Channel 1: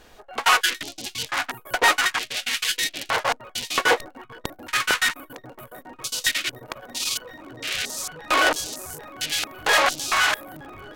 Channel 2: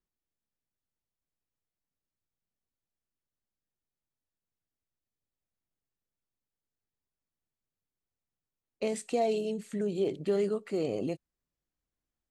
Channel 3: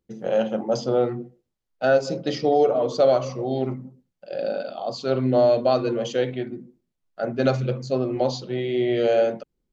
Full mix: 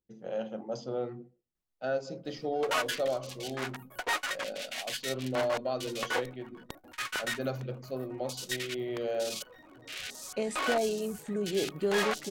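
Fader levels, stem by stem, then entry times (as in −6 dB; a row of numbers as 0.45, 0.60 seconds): −13.0, −1.0, −13.0 decibels; 2.25, 1.55, 0.00 seconds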